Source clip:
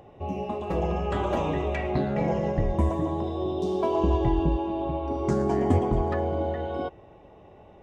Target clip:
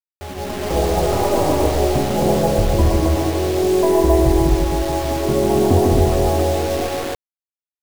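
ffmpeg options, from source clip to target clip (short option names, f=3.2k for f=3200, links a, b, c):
-filter_complex "[0:a]acrossover=split=310|1200[a][b][c];[c]aeval=exprs='abs(val(0))':c=same[d];[a][b][d]amix=inputs=3:normalize=0,lowpass=1.9k,equalizer=f=190:t=o:w=0.68:g=-7.5,asplit=2[e][f];[f]aecho=0:1:148.7|265.3:0.631|0.631[g];[e][g]amix=inputs=2:normalize=0,acrusher=bits=5:mix=0:aa=0.000001,dynaudnorm=f=340:g=3:m=9.5dB"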